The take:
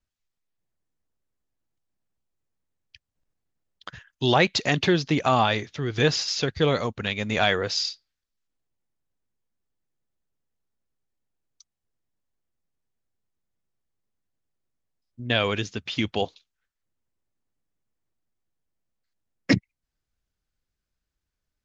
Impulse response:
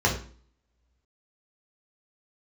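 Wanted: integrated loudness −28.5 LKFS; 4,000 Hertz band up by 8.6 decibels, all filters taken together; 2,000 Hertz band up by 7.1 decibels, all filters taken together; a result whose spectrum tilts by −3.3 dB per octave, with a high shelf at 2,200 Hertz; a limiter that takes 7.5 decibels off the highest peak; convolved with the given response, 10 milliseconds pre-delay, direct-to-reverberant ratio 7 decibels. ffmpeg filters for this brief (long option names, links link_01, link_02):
-filter_complex "[0:a]equalizer=frequency=2000:width_type=o:gain=4,highshelf=frequency=2200:gain=7,equalizer=frequency=4000:width_type=o:gain=3,alimiter=limit=-7.5dB:level=0:latency=1,asplit=2[link_01][link_02];[1:a]atrim=start_sample=2205,adelay=10[link_03];[link_02][link_03]afir=irnorm=-1:irlink=0,volume=-21.5dB[link_04];[link_01][link_04]amix=inputs=2:normalize=0,volume=-8.5dB"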